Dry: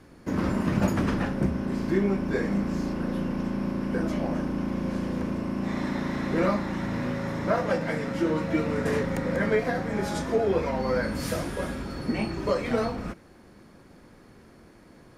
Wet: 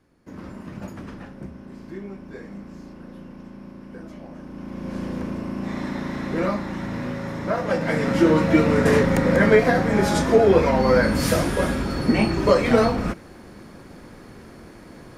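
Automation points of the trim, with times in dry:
4.34 s -11.5 dB
5.02 s +0.5 dB
7.57 s +0.5 dB
8.10 s +9 dB

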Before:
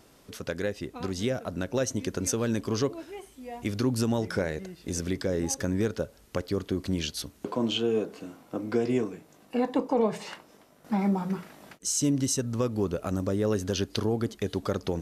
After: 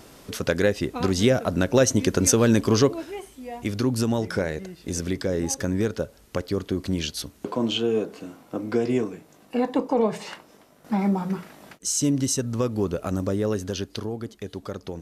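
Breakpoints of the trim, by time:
2.67 s +9.5 dB
3.65 s +3 dB
13.30 s +3 dB
14.19 s -4.5 dB

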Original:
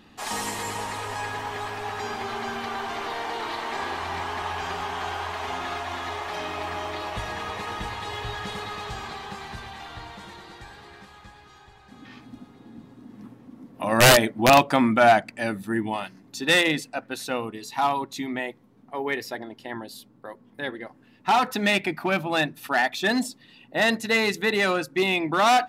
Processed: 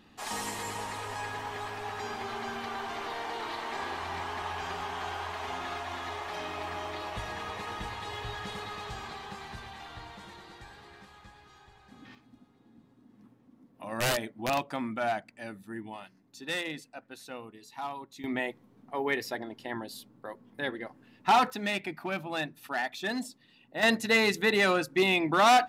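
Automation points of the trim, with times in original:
-5.5 dB
from 12.15 s -14 dB
from 18.24 s -2 dB
from 21.50 s -9.5 dB
from 23.83 s -2 dB

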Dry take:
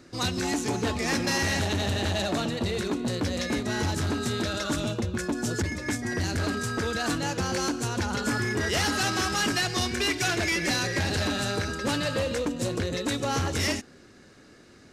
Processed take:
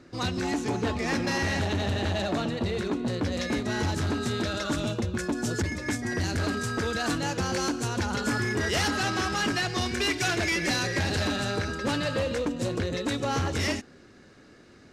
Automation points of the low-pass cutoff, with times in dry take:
low-pass 6 dB/octave
3.1 kHz
from 3.32 s 5.8 kHz
from 4.84 s 9.8 kHz
from 8.88 s 3.8 kHz
from 9.86 s 8.5 kHz
from 11.36 s 4.7 kHz

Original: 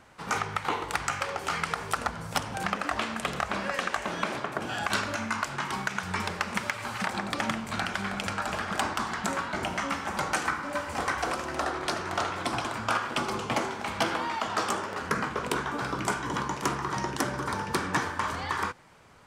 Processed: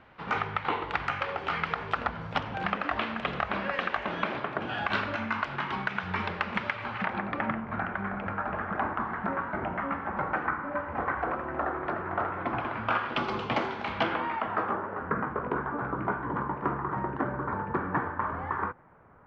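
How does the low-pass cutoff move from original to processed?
low-pass 24 dB/octave
6.75 s 3.4 kHz
7.68 s 1.8 kHz
12.31 s 1.8 kHz
13.27 s 3.9 kHz
13.86 s 3.9 kHz
14.79 s 1.6 kHz

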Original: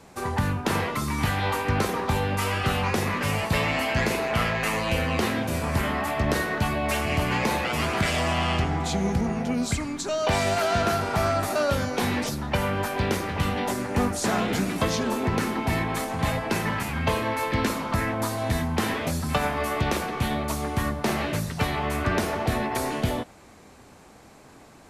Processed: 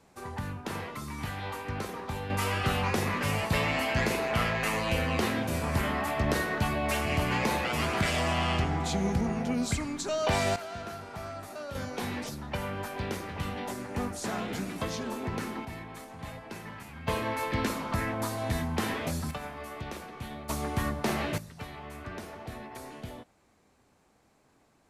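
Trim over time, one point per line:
-11 dB
from 2.30 s -3.5 dB
from 10.56 s -16 dB
from 11.75 s -9 dB
from 15.65 s -16 dB
from 17.08 s -5 dB
from 19.31 s -14 dB
from 20.49 s -4 dB
from 21.38 s -16 dB

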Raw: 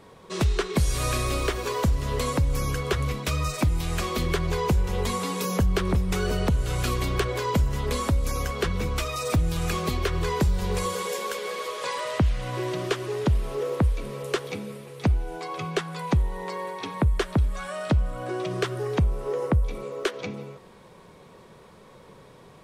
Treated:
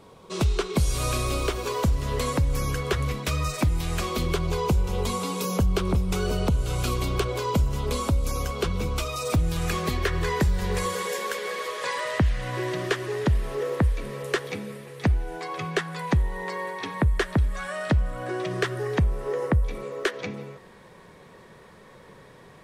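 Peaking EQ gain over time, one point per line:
peaking EQ 1.8 kHz 0.33 oct
1.50 s -7.5 dB
2.21 s +1 dB
3.86 s +1 dB
4.40 s -10 dB
9.17 s -10 dB
9.52 s +1.5 dB
10.08 s +8.5 dB

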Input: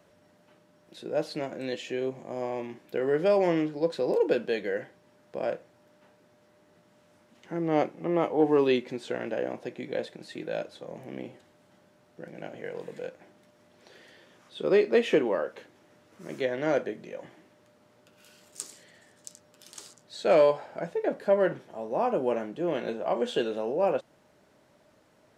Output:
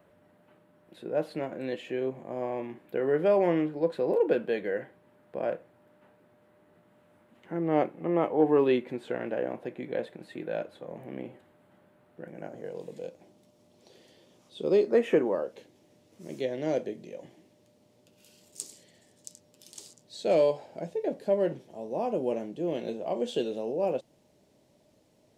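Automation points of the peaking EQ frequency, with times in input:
peaking EQ -15 dB 1.2 oct
12.23 s 5.7 kHz
12.78 s 1.6 kHz
14.75 s 1.6 kHz
15.09 s 4.7 kHz
15.53 s 1.4 kHz

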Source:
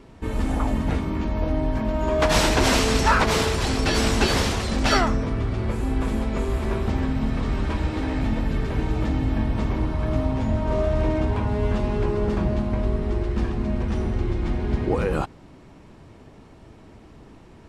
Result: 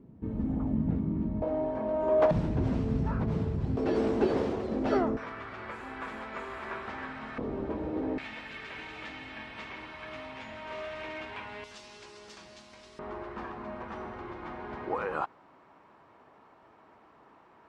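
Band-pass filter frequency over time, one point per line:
band-pass filter, Q 1.5
180 Hz
from 1.42 s 580 Hz
from 2.31 s 140 Hz
from 3.77 s 390 Hz
from 5.17 s 1.5 kHz
from 7.38 s 440 Hz
from 8.18 s 2.4 kHz
from 11.64 s 5.8 kHz
from 12.99 s 1.1 kHz

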